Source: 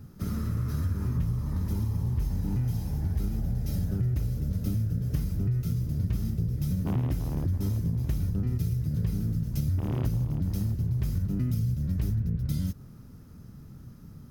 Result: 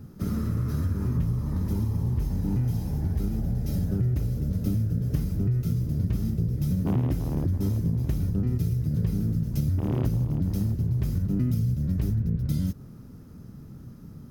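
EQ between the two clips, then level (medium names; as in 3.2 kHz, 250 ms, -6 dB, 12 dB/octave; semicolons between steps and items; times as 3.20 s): peaking EQ 330 Hz +5.5 dB 2.6 oct; 0.0 dB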